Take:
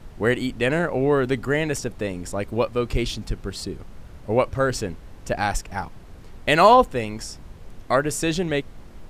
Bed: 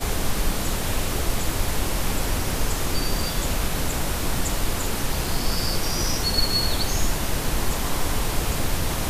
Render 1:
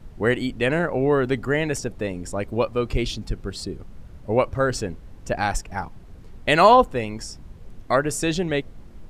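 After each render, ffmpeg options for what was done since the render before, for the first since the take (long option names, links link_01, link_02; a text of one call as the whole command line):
ffmpeg -i in.wav -af "afftdn=noise_reduction=6:noise_floor=-43" out.wav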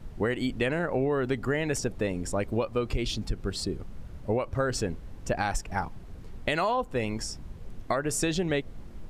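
ffmpeg -i in.wav -af "alimiter=limit=-12.5dB:level=0:latency=1:release=266,acompressor=threshold=-23dB:ratio=6" out.wav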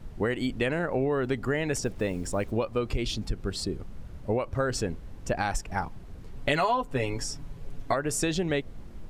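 ffmpeg -i in.wav -filter_complex "[0:a]asettb=1/sr,asplit=3[link_01][link_02][link_03];[link_01]atrim=end=1.854[link_04];[link_02]atrim=start=1.85:end=2.52,asetpts=PTS-STARTPTS,afade=type=in:duration=0.004:curve=qsin,afade=type=out:start_time=0.666:duration=0.004:curve=qsin,acrusher=bits=8:mix=0:aa=0.5[link_05];[link_03]atrim=start=2.516[link_06];[link_04][link_05]acrossfade=duration=0.004:curve1=hsin:curve2=qsin[link_07];[link_07][link_06]acrossfade=duration=0.004:curve1=qsin:curve2=hsin,asettb=1/sr,asplit=3[link_08][link_09][link_10];[link_08]atrim=end=6.364[link_11];[link_09]atrim=start=6.36:end=7.94,asetpts=PTS-STARTPTS,afade=type=in:duration=0.004:curve=qsin,afade=type=out:start_time=1.576:duration=0.004:curve=qsin,aecho=1:1:7.1:0.7,atrim=end_sample=69678[link_12];[link_10]atrim=start=7.936[link_13];[link_11][link_12]acrossfade=duration=0.004:curve1=hsin:curve2=qsin[link_14];[link_14][link_13]acrossfade=duration=0.004:curve1=qsin:curve2=hsin" out.wav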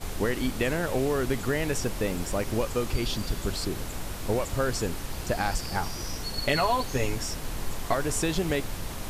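ffmpeg -i in.wav -i bed.wav -filter_complex "[1:a]volume=-11dB[link_01];[0:a][link_01]amix=inputs=2:normalize=0" out.wav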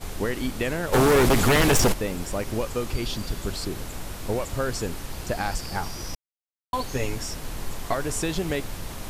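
ffmpeg -i in.wav -filter_complex "[0:a]asplit=3[link_01][link_02][link_03];[link_01]afade=type=out:start_time=0.92:duration=0.02[link_04];[link_02]aeval=exprs='0.2*sin(PI/2*3.16*val(0)/0.2)':channel_layout=same,afade=type=in:start_time=0.92:duration=0.02,afade=type=out:start_time=1.92:duration=0.02[link_05];[link_03]afade=type=in:start_time=1.92:duration=0.02[link_06];[link_04][link_05][link_06]amix=inputs=3:normalize=0,asplit=3[link_07][link_08][link_09];[link_07]atrim=end=6.15,asetpts=PTS-STARTPTS,afade=type=out:start_time=6.146:duration=0.004:curve=hsin[link_10];[link_08]atrim=start=6.15:end=6.73,asetpts=PTS-STARTPTS,volume=0[link_11];[link_09]atrim=start=6.73,asetpts=PTS-STARTPTS,afade=type=in:duration=0.004:curve=hsin[link_12];[link_10][link_11][link_12]concat=n=3:v=0:a=1" out.wav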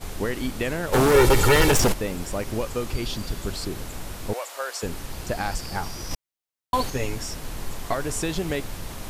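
ffmpeg -i in.wav -filter_complex "[0:a]asettb=1/sr,asplit=3[link_01][link_02][link_03];[link_01]atrim=end=1.144[link_04];[link_02]atrim=start=1.14:end=1.71,asetpts=PTS-STARTPTS,afade=type=in:duration=0.004:curve=qsin,afade=type=out:start_time=0.566:duration=0.004:curve=qsin,aecho=1:1:2.2:0.65,atrim=end_sample=25137[link_05];[link_03]atrim=start=1.706[link_06];[link_04][link_05]acrossfade=duration=0.004:curve1=hsin:curve2=qsin[link_07];[link_07][link_06]acrossfade=duration=0.004:curve1=qsin:curve2=hsin,asettb=1/sr,asplit=3[link_08][link_09][link_10];[link_08]atrim=end=4.334[link_11];[link_09]atrim=start=4.33:end=4.83,asetpts=PTS-STARTPTS,afade=type=in:duration=0.004:curve=qsin,afade=type=out:start_time=0.496:duration=0.004:curve=qsin,highpass=frequency=560:width=0.5412,highpass=frequency=560:width=1.3066[link_12];[link_10]atrim=start=4.826[link_13];[link_11][link_12]acrossfade=duration=0.004:curve1=hsin:curve2=qsin[link_14];[link_14][link_13]acrossfade=duration=0.004:curve1=qsin:curve2=hsin,asplit=3[link_15][link_16][link_17];[link_15]atrim=end=6.112[link_18];[link_16]atrim=start=6.108:end=6.902,asetpts=PTS-STARTPTS,volume=4.5dB[link_19];[link_17]atrim=start=6.898[link_20];[link_18][link_19]acrossfade=duration=0.004:curve1=hsin:curve2=hsin[link_21];[link_21][link_20]acrossfade=duration=0.004:curve1=hsin:curve2=hsin" out.wav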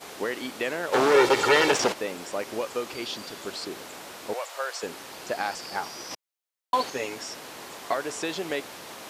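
ffmpeg -i in.wav -filter_complex "[0:a]acrossover=split=6600[link_01][link_02];[link_02]acompressor=threshold=-49dB:ratio=4:attack=1:release=60[link_03];[link_01][link_03]amix=inputs=2:normalize=0,highpass=370" out.wav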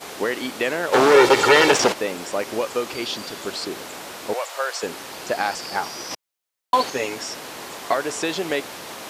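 ffmpeg -i in.wav -af "volume=6dB,alimiter=limit=-2dB:level=0:latency=1" out.wav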